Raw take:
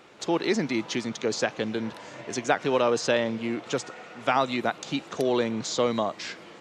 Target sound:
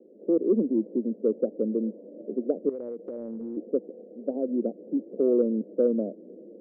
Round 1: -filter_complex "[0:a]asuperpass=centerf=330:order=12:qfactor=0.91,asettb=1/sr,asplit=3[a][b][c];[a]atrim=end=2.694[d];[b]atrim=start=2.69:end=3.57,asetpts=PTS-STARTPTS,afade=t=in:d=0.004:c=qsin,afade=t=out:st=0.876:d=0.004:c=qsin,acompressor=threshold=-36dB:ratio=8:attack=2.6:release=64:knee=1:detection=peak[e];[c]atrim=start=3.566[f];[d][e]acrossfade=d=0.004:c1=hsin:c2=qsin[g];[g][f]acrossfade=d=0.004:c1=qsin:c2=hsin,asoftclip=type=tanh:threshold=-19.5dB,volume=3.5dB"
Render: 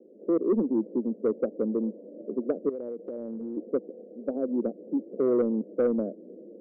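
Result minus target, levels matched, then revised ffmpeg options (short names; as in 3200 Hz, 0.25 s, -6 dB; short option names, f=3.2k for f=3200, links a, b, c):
soft clip: distortion +16 dB
-filter_complex "[0:a]asuperpass=centerf=330:order=12:qfactor=0.91,asettb=1/sr,asplit=3[a][b][c];[a]atrim=end=2.694[d];[b]atrim=start=2.69:end=3.57,asetpts=PTS-STARTPTS,afade=t=in:d=0.004:c=qsin,afade=t=out:st=0.876:d=0.004:c=qsin,acompressor=threshold=-36dB:ratio=8:attack=2.6:release=64:knee=1:detection=peak[e];[c]atrim=start=3.566[f];[d][e]acrossfade=d=0.004:c1=hsin:c2=qsin[g];[g][f]acrossfade=d=0.004:c1=qsin:c2=hsin,asoftclip=type=tanh:threshold=-10dB,volume=3.5dB"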